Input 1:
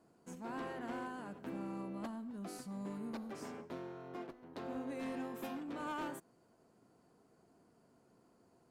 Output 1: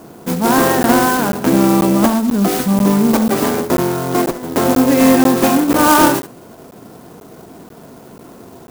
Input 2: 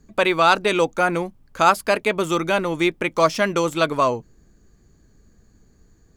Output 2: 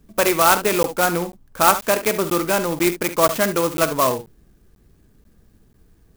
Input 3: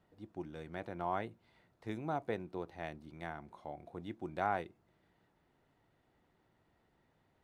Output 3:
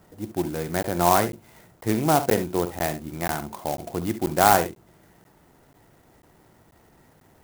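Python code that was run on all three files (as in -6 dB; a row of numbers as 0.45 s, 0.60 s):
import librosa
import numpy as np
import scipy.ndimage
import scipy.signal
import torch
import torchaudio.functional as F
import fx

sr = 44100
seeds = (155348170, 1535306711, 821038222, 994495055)

y = fx.room_early_taps(x, sr, ms=(46, 69), db=(-15.0, -13.0))
y = fx.buffer_crackle(y, sr, first_s=0.83, period_s=0.49, block=512, kind='zero')
y = fx.clock_jitter(y, sr, seeds[0], jitter_ms=0.066)
y = y * 10.0 ** (-2 / 20.0) / np.max(np.abs(y))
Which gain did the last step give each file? +30.5 dB, +0.5 dB, +17.0 dB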